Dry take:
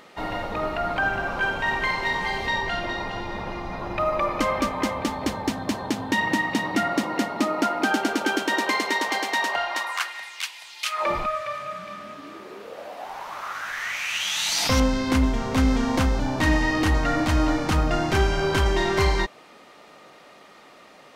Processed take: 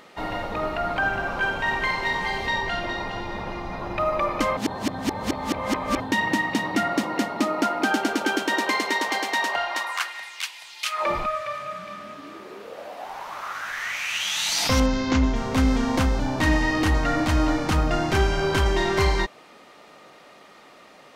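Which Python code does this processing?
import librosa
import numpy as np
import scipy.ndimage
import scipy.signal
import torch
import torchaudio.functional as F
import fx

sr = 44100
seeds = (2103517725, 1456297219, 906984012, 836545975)

y = fx.resample_bad(x, sr, factor=3, down='none', up='filtered', at=(14.86, 15.36))
y = fx.edit(y, sr, fx.reverse_span(start_s=4.57, length_s=1.43), tone=tone)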